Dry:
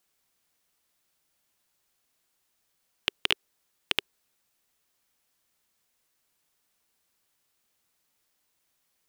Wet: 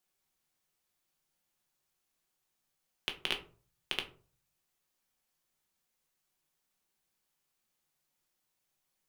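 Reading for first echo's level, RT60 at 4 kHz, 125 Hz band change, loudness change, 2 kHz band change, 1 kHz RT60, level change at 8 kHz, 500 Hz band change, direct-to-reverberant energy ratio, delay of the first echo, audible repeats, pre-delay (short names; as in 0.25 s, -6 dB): none, 0.20 s, -4.5 dB, -7.5 dB, -7.0 dB, 0.40 s, -7.0 dB, -6.0 dB, 3.0 dB, none, none, 5 ms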